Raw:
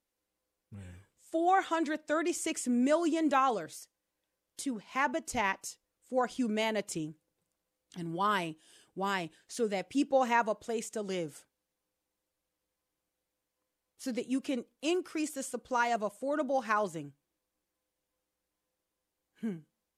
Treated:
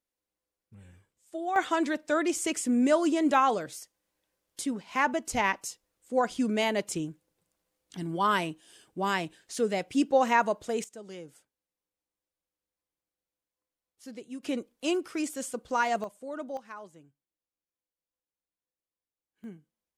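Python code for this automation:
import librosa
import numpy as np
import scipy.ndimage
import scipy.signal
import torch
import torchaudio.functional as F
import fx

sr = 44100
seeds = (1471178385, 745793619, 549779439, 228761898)

y = fx.gain(x, sr, db=fx.steps((0.0, -5.0), (1.56, 4.0), (10.84, -8.0), (14.43, 2.5), (16.04, -5.5), (16.57, -14.0), (19.44, -7.0)))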